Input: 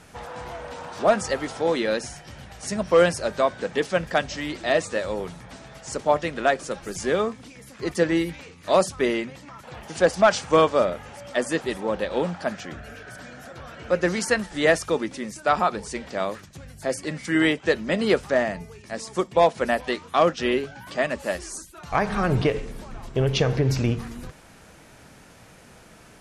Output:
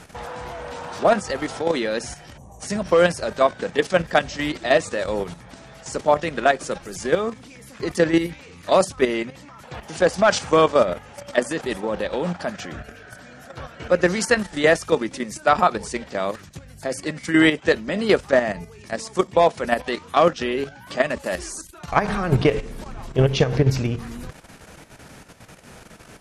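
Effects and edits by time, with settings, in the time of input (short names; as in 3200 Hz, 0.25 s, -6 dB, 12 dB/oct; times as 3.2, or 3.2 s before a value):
2.38–2.61 spectral gain 1200–5700 Hz -25 dB
whole clip: level quantiser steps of 10 dB; gain +6.5 dB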